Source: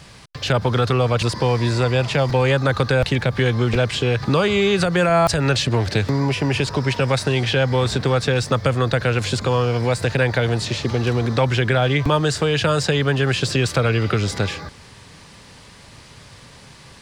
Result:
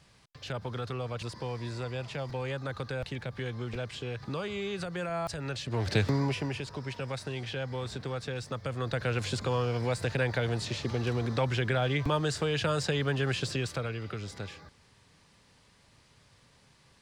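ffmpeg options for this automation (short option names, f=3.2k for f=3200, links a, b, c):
-af "volume=0.5dB,afade=t=in:st=5.66:d=0.33:silence=0.266073,afade=t=out:st=5.99:d=0.61:silence=0.281838,afade=t=in:st=8.64:d=0.49:silence=0.473151,afade=t=out:st=13.32:d=0.65:silence=0.421697"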